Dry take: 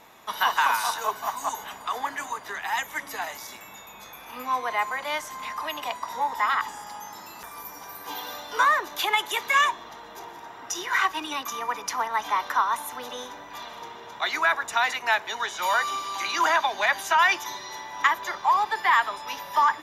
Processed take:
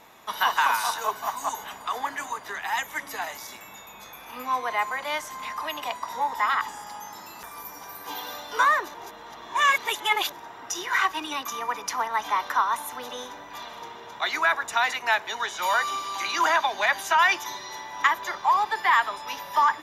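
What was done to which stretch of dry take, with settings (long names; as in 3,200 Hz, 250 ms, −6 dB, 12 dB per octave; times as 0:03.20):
0:08.94–0:10.32: reverse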